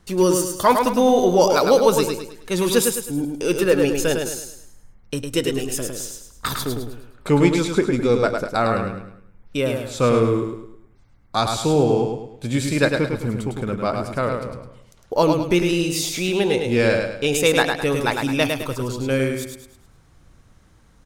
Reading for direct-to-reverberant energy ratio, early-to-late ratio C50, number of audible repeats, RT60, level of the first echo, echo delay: no reverb audible, no reverb audible, 4, no reverb audible, −5.0 dB, 105 ms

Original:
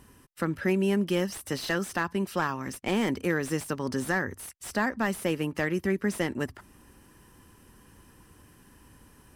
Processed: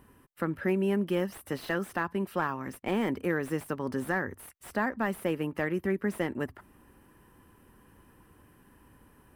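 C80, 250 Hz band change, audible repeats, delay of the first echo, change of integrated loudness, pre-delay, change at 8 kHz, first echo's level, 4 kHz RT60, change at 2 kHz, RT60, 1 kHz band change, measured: no reverb audible, −2.5 dB, no echo audible, no echo audible, −2.5 dB, no reverb audible, −10.0 dB, no echo audible, no reverb audible, −3.0 dB, no reverb audible, −1.5 dB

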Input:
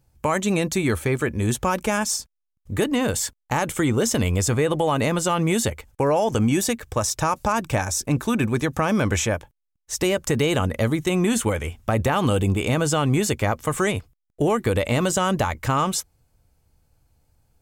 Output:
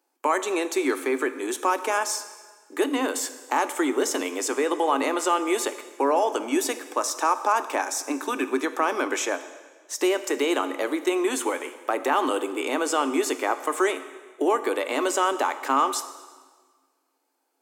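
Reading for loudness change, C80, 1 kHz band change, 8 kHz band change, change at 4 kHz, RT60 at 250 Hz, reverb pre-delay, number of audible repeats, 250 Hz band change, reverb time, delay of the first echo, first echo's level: −2.5 dB, 14.0 dB, +1.5 dB, −3.5 dB, −3.0 dB, 1.5 s, 6 ms, no echo audible, −5.0 dB, 1.5 s, no echo audible, no echo audible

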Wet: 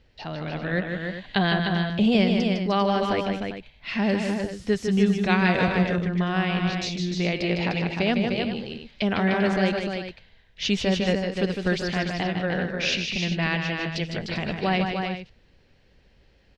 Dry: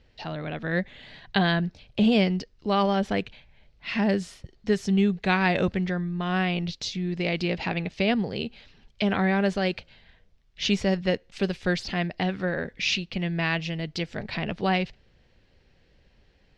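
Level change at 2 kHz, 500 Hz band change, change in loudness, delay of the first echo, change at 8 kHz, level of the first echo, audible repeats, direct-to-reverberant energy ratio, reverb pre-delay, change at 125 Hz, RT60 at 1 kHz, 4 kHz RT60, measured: +2.0 dB, +2.0 dB, +2.0 dB, 155 ms, can't be measured, −6.0 dB, 3, no reverb audible, no reverb audible, +2.5 dB, no reverb audible, no reverb audible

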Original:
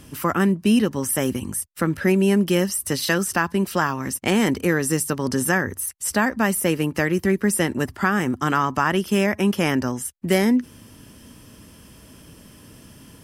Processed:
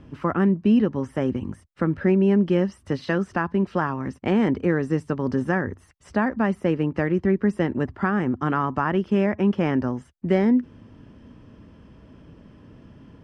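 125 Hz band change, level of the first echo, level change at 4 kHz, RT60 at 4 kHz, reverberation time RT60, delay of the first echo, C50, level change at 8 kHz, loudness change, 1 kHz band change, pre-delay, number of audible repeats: 0.0 dB, no echo audible, −12.5 dB, no reverb audible, no reverb audible, no echo audible, no reverb audible, below −25 dB, −2.0 dB, −3.5 dB, no reverb audible, no echo audible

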